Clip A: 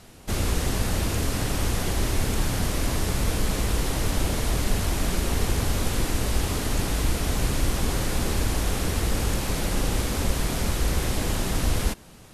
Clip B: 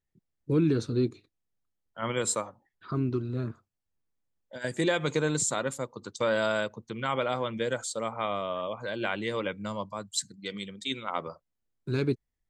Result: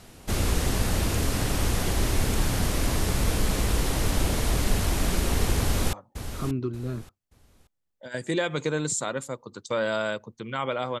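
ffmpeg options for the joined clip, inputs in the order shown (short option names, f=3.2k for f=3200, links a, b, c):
-filter_complex "[0:a]apad=whole_dur=11,atrim=end=11,atrim=end=5.932[a];[1:a]atrim=start=2.428:end=7.5[b];[a][b]acrossfade=d=0.004:c1=hsin:c2=hsin,asplit=2[c][d];[d]afade=t=in:st=5.57:d=0.01,afade=t=out:st=5.93:d=0.01,aecho=0:1:580|1160|1740:0.298538|0.0746346|0.0186586[e];[c][e]amix=inputs=2:normalize=0"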